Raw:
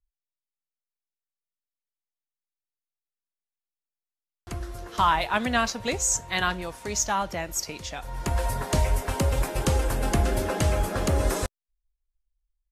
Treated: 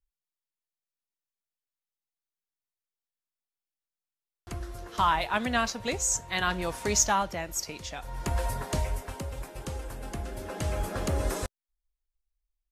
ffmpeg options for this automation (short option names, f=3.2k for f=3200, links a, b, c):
-af "volume=13dB,afade=t=in:st=6.45:d=0.33:silence=0.398107,afade=t=out:st=6.78:d=0.54:silence=0.398107,afade=t=out:st=8.42:d=0.84:silence=0.316228,afade=t=in:st=10.36:d=0.52:silence=0.398107"